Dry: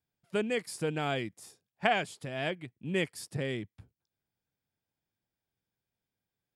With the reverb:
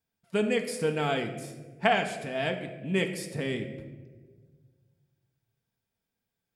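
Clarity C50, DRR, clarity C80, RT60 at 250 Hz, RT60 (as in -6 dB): 9.0 dB, 4.0 dB, 10.5 dB, 1.9 s, 1.5 s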